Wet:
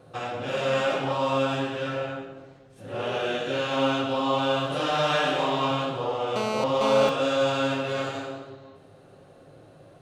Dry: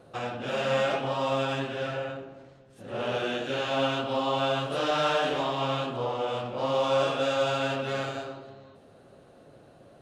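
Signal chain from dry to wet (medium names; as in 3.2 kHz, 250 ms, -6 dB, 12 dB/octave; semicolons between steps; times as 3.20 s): 5.07–5.71 s: doubling 27 ms -3.5 dB; gated-style reverb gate 280 ms falling, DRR 2 dB; 6.36–7.09 s: mobile phone buzz -28 dBFS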